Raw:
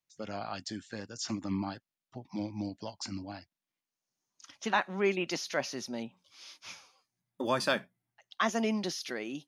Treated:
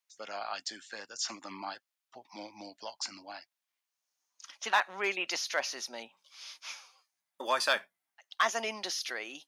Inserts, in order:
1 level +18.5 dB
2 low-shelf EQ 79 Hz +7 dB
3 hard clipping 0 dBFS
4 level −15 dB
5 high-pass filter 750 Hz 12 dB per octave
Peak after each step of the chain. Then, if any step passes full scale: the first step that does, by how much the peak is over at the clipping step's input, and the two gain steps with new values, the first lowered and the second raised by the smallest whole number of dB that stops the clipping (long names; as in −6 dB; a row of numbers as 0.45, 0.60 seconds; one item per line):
+3.5, +3.5, 0.0, −15.0, −13.0 dBFS
step 1, 3.5 dB
step 1 +14.5 dB, step 4 −11 dB